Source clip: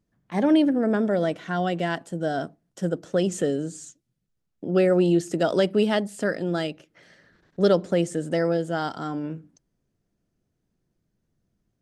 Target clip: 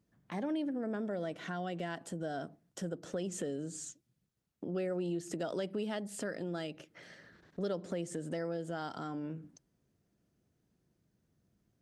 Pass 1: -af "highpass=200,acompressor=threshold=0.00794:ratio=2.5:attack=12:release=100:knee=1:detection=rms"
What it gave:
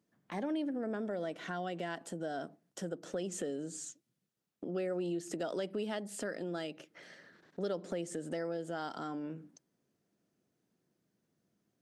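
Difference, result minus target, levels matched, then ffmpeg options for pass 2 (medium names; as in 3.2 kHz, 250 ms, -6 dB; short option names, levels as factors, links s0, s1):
125 Hz band -3.5 dB
-af "highpass=56,acompressor=threshold=0.00794:ratio=2.5:attack=12:release=100:knee=1:detection=rms"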